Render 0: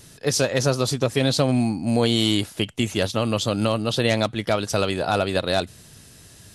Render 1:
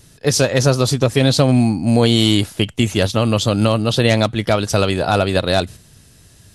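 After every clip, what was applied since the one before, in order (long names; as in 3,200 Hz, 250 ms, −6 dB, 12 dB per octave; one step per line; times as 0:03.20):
noise gate −38 dBFS, range −7 dB
low-shelf EQ 110 Hz +8 dB
level +5 dB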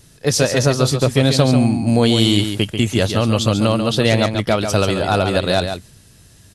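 single-tap delay 140 ms −7.5 dB
level −1 dB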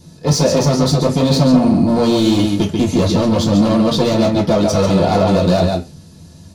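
gain into a clipping stage and back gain 18.5 dB
surface crackle 87 per second −51 dBFS
convolution reverb RT60 0.25 s, pre-delay 3 ms, DRR −8 dB
level −7.5 dB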